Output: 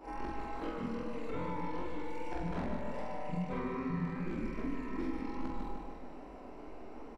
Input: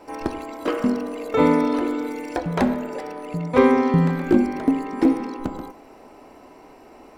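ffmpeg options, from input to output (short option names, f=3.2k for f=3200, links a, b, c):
-filter_complex "[0:a]afftfilt=real='re':imag='-im':win_size=4096:overlap=0.75,equalizer=f=100:t=o:w=0.9:g=-11,acrossover=split=1000[a][b];[a]alimiter=limit=-23dB:level=0:latency=1:release=23[c];[c][b]amix=inputs=2:normalize=0,aemphasis=mode=reproduction:type=bsi,flanger=delay=18:depth=7.8:speed=2.5,acrossover=split=180|1400[d][e][f];[d]acompressor=threshold=-40dB:ratio=4[g];[e]acompressor=threshold=-43dB:ratio=4[h];[f]acompressor=threshold=-54dB:ratio=4[i];[g][h][i]amix=inputs=3:normalize=0,aecho=1:1:151|302|453|604|755|906|1057|1208:0.501|0.296|0.174|0.103|0.0607|0.0358|0.0211|0.0125,volume=1dB"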